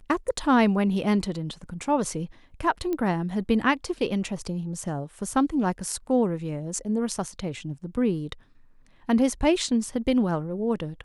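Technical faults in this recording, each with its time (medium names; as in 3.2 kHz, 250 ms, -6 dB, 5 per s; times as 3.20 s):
2.93 s: pop -17 dBFS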